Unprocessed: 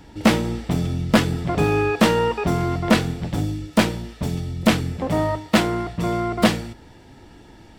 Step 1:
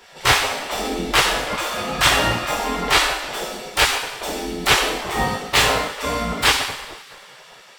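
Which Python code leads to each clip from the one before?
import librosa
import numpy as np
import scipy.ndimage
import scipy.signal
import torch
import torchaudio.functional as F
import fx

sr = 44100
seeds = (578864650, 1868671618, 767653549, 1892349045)

y = fx.rev_double_slope(x, sr, seeds[0], early_s=0.78, late_s=2.7, knee_db=-18, drr_db=-4.5)
y = fx.spec_gate(y, sr, threshold_db=-15, keep='weak')
y = y * 10.0 ** (4.0 / 20.0)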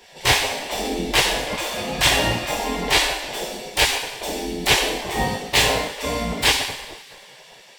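y = fx.peak_eq(x, sr, hz=1300.0, db=-14.5, octaves=0.38)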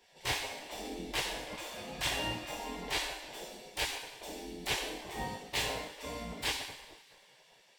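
y = fx.comb_fb(x, sr, f0_hz=310.0, decay_s=0.39, harmonics='odd', damping=0.0, mix_pct=60)
y = y * 10.0 ** (-9.0 / 20.0)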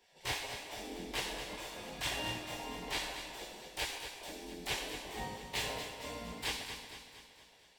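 y = fx.echo_feedback(x, sr, ms=232, feedback_pct=54, wet_db=-9.0)
y = y * 10.0 ** (-3.5 / 20.0)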